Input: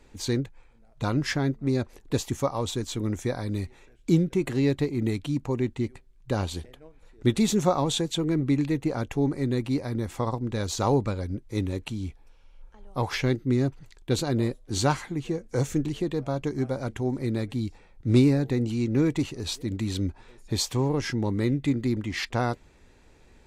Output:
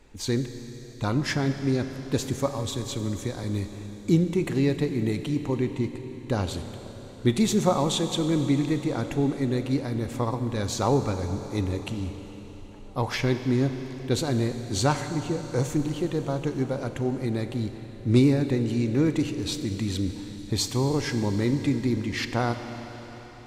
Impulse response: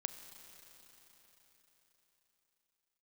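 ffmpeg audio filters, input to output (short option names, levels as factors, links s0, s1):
-filter_complex "[0:a]asettb=1/sr,asplit=3[s0][s1][s2];[s0]atrim=end=2.464[s3];[s1]atrim=start=2.46:end=3.44,asetpts=PTS-STARTPTS,afade=t=in:d=0.004:c=qsin,afade=t=out:st=0.976:d=0.004:c=qsin,acrossover=split=200|3000[s4][s5][s6];[s5]acompressor=threshold=0.0251:ratio=6[s7];[s4][s7][s6]amix=inputs=3:normalize=0[s8];[s2]atrim=start=3.436[s9];[s3][s8]acrossfade=d=0.004:c1=hsin:c2=qsin[s10];[s10][s9]acrossfade=d=0.004:c1=qsin:c2=hsin[s11];[1:a]atrim=start_sample=2205[s12];[s11][s12]afir=irnorm=-1:irlink=0,volume=1.26"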